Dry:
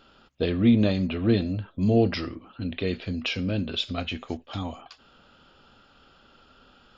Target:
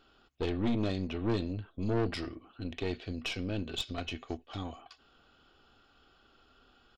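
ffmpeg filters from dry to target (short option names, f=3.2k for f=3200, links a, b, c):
-af "aecho=1:1:2.7:0.41,aeval=exprs='(tanh(11.2*val(0)+0.65)-tanh(0.65))/11.2':c=same,volume=-4.5dB"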